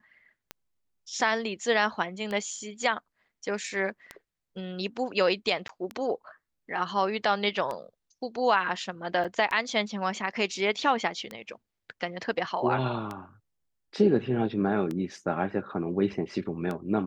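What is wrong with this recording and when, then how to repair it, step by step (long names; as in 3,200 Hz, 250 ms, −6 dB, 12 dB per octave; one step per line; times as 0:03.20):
scratch tick 33 1/3 rpm −20 dBFS
0:05.68–0:05.69: drop-out 13 ms
0:09.24–0:09.25: drop-out 6.3 ms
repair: click removal
repair the gap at 0:05.68, 13 ms
repair the gap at 0:09.24, 6.3 ms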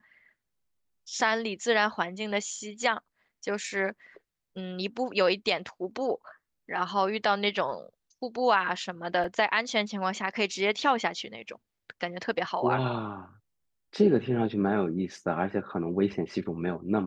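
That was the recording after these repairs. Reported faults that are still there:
none of them is left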